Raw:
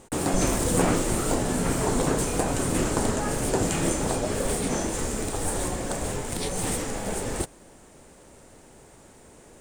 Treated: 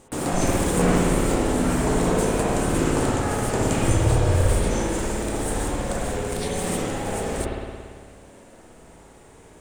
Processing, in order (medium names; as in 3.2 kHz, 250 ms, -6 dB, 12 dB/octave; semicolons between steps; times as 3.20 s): 3.83–4.52 s: resonant low shelf 140 Hz +9 dB, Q 3; spring tank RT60 1.9 s, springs 56 ms, chirp 50 ms, DRR -3 dB; trim -1.5 dB